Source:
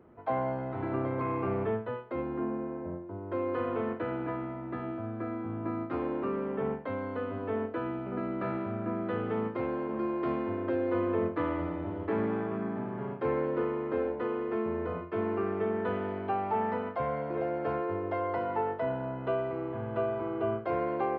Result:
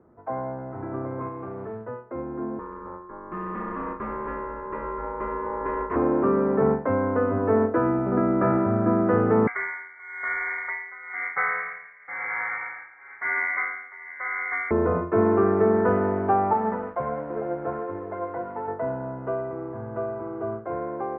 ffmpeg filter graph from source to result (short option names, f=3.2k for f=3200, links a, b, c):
-filter_complex "[0:a]asettb=1/sr,asplit=3[a][b][c];[a]atrim=end=1.284[d];[b]atrim=start=1.28:end=1.85,asetpts=PTS-STARTPTS,afade=t=in:d=0.004:c=qsin,afade=t=out:st=0.566:d=0.004:c=qsin,bandreject=f=50:t=h:w=6,bandreject=f=100:t=h:w=6,bandreject=f=150:t=h:w=6,bandreject=f=200:t=h:w=6,bandreject=f=250:t=h:w=6,bandreject=f=300:t=h:w=6,bandreject=f=350:t=h:w=6,bandreject=f=400:t=h:w=6,bandreject=f=450:t=h:w=6,acompressor=threshold=-32dB:ratio=4:attack=3.2:release=140:knee=1:detection=peak,acrusher=bits=4:mode=log:mix=0:aa=0.000001[e];[c]atrim=start=1.846[f];[d][e]acrossfade=d=0.004:c1=hsin:c2=qsin[g];[g][f]acrossfade=d=0.004:c1=qsin:c2=hsin,asettb=1/sr,asplit=3[h][i][j];[h]atrim=end=2.594[k];[i]atrim=start=2.59:end=5.96,asetpts=PTS-STARTPTS,afade=t=in:d=0.004:c=qsin,afade=t=out:st=3.366:d=0.004:c=qsin,highpass=110,aeval=exprs='val(0)*sin(2*PI*710*n/s)':c=same,asoftclip=type=hard:threshold=-31dB[l];[j]atrim=start=5.956[m];[k][l]acrossfade=d=0.004:c1=hsin:c2=qsin[n];[n][m]acrossfade=d=0.004:c1=qsin:c2=hsin,asettb=1/sr,asplit=3[o][p][q];[o]atrim=end=9.474[r];[p]atrim=start=9.47:end=14.71,asetpts=PTS-STARTPTS,afade=t=in:d=0.004:c=qsin,afade=t=out:st=5.236:d=0.004:c=qsin,highpass=290,tremolo=f=1:d=0.87,lowpass=f=2.1k:t=q:w=0.5098,lowpass=f=2.1k:t=q:w=0.6013,lowpass=f=2.1k:t=q:w=0.9,lowpass=f=2.1k:t=q:w=2.563,afreqshift=-2500[s];[q]atrim=start=14.706[t];[r][s]acrossfade=d=0.004:c1=hsin:c2=qsin[u];[u][t]acrossfade=d=0.004:c1=qsin:c2=hsin,asettb=1/sr,asplit=3[v][w][x];[v]atrim=end=16.534[y];[w]atrim=start=16.53:end=18.68,asetpts=PTS-STARTPTS,afade=t=in:d=0.004:c=qsin,afade=t=out:st=2.146:d=0.004:c=qsin,flanger=delay=3.2:depth=3.3:regen=45:speed=1.4:shape=triangular,aeval=exprs='sgn(val(0))*max(abs(val(0))-0.00251,0)':c=same[z];[x]atrim=start=18.676[aa];[y][z]acrossfade=d=0.004:c1=hsin:c2=qsin[ab];[ab][aa]acrossfade=d=0.004:c1=qsin:c2=hsin,lowpass=f=1.7k:w=0.5412,lowpass=f=1.7k:w=1.3066,dynaudnorm=f=550:g=17:m=12dB"